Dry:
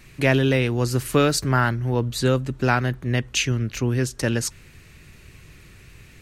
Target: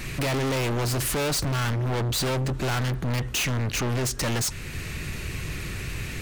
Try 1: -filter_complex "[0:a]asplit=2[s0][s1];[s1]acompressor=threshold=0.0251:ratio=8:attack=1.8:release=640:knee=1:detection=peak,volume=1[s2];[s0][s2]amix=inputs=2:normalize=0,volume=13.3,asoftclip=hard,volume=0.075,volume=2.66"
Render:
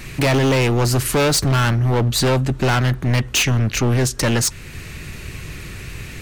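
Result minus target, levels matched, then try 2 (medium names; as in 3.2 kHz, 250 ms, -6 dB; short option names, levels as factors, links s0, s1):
overload inside the chain: distortion -4 dB
-filter_complex "[0:a]asplit=2[s0][s1];[s1]acompressor=threshold=0.0251:ratio=8:attack=1.8:release=640:knee=1:detection=peak,volume=1[s2];[s0][s2]amix=inputs=2:normalize=0,volume=44.7,asoftclip=hard,volume=0.0224,volume=2.66"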